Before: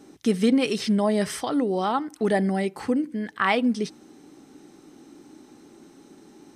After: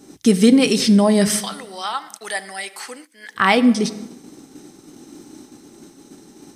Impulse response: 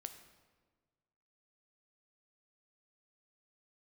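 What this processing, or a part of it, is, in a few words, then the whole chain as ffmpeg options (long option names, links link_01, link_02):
keyed gated reverb: -filter_complex "[0:a]asettb=1/sr,asplit=3[link_01][link_02][link_03];[link_01]atrim=end=1.374[link_04];[link_02]atrim=start=1.37:end=3.35,asetpts=PTS-STARTPTS,afade=type=in:duration=0.004:curve=qsin,afade=type=out:start_time=1.976:duration=0.004:curve=qsin,highpass=1300[link_05];[link_03]atrim=start=3.346[link_06];[link_04][link_05]acrossfade=duration=0.004:curve1=hsin:curve2=qsin[link_07];[link_07][link_06]acrossfade=duration=0.004:curve1=qsin:curve2=hsin,asplit=3[link_08][link_09][link_10];[1:a]atrim=start_sample=2205[link_11];[link_09][link_11]afir=irnorm=-1:irlink=0[link_12];[link_10]apad=whole_len=288993[link_13];[link_12][link_13]sidechaingate=range=-33dB:threshold=-48dB:ratio=16:detection=peak,volume=5dB[link_14];[link_08][link_14]amix=inputs=2:normalize=0,bass=frequency=250:gain=4,treble=frequency=4000:gain=8"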